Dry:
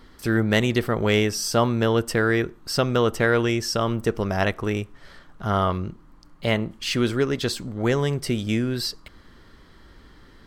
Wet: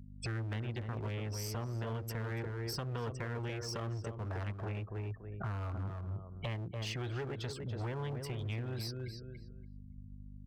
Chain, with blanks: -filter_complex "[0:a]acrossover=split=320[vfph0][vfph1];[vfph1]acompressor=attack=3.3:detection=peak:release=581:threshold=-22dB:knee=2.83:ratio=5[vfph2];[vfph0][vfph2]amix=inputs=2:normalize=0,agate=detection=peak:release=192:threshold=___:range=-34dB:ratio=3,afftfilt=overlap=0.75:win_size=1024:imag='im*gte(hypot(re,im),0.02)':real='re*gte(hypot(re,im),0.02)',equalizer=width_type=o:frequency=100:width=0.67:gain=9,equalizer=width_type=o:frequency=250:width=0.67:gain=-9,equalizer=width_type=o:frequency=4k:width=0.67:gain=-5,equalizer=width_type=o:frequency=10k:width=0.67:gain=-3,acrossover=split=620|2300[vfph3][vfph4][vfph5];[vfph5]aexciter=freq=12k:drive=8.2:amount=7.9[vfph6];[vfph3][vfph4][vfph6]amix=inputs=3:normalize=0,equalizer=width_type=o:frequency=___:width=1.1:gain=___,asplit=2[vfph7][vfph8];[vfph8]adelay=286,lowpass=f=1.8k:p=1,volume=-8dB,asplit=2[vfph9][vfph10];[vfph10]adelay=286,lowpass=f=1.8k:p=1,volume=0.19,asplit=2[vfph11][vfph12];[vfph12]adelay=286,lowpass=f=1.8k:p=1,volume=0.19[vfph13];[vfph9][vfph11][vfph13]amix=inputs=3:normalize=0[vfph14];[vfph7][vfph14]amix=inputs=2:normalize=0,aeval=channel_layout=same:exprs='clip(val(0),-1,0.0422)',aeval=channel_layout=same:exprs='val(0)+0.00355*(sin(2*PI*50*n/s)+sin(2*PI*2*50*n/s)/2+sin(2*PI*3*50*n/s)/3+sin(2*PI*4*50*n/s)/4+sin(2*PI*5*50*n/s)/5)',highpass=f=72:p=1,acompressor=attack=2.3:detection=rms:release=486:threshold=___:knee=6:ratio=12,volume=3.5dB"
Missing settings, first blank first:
-44dB, 560, 2.5, -37dB